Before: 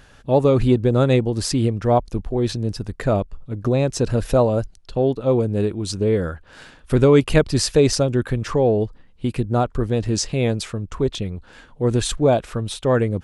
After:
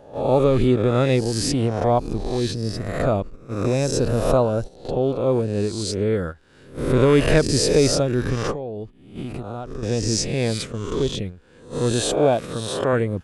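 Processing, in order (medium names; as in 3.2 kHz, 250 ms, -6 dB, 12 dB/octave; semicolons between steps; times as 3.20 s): reverse spectral sustain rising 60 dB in 0.88 s; gate -25 dBFS, range -11 dB; 8.51–9.83 s: compression 6:1, threshold -25 dBFS, peak gain reduction 12 dB; 11.92–12.93 s: high-pass 120 Hz 6 dB/octave; trim -3 dB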